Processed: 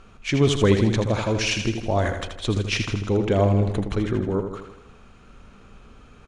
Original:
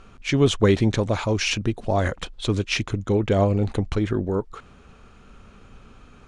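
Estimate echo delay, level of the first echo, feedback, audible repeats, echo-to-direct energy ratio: 80 ms, -7.5 dB, 56%, 6, -6.0 dB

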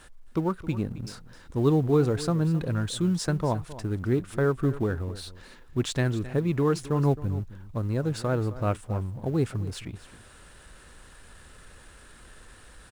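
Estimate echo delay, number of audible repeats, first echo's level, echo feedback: 265 ms, 1, -16.0 dB, no regular repeats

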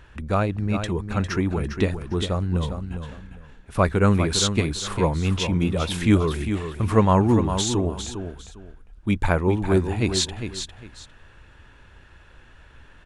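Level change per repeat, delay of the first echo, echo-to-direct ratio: -12.5 dB, 403 ms, -8.5 dB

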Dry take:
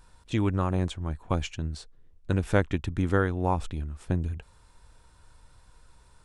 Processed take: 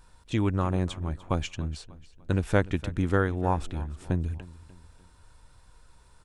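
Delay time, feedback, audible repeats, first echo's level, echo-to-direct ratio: 296 ms, 41%, 3, -18.5 dB, -17.5 dB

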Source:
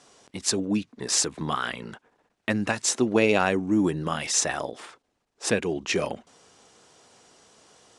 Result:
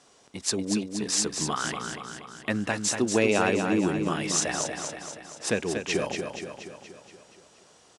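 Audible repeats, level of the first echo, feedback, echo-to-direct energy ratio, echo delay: 6, -6.0 dB, 57%, -4.5 dB, 237 ms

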